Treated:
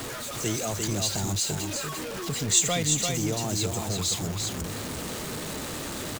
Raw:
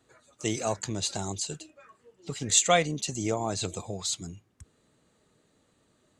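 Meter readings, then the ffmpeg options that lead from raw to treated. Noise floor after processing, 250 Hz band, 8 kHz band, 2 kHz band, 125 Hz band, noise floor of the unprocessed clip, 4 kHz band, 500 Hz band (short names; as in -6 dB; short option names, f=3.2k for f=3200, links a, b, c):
-35 dBFS, +4.0 dB, +4.0 dB, +1.5 dB, +6.5 dB, -69 dBFS, +4.0 dB, -1.0 dB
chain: -filter_complex "[0:a]aeval=exprs='val(0)+0.5*0.0355*sgn(val(0))':c=same,acrossover=split=290|3000[a][b][c];[b]acompressor=threshold=-37dB:ratio=2[d];[a][d][c]amix=inputs=3:normalize=0,asplit=2[e][f];[f]aecho=0:1:345:0.596[g];[e][g]amix=inputs=2:normalize=0"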